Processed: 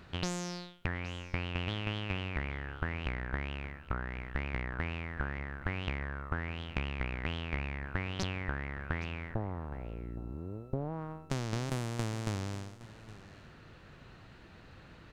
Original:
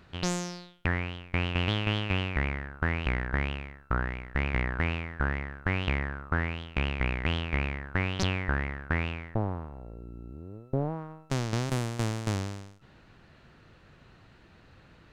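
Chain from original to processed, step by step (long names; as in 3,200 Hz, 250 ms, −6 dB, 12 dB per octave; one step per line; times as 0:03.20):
downward compressor 5 to 1, threshold −34 dBFS, peak gain reduction 11 dB
on a send: single-tap delay 816 ms −18 dB
on the sum: level +2 dB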